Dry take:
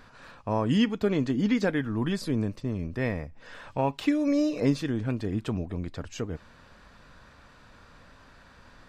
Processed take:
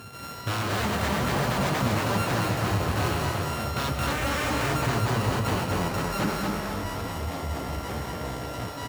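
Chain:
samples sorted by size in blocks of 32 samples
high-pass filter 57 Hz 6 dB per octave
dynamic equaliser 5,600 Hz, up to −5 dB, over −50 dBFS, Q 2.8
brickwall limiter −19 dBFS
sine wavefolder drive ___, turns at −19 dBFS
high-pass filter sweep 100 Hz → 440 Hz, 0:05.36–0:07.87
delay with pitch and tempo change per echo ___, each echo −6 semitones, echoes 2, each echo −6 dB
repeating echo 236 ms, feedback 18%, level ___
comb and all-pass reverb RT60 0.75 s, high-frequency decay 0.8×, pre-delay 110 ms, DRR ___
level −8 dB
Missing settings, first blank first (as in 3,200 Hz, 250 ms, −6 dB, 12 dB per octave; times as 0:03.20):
14 dB, 136 ms, −3 dB, 7 dB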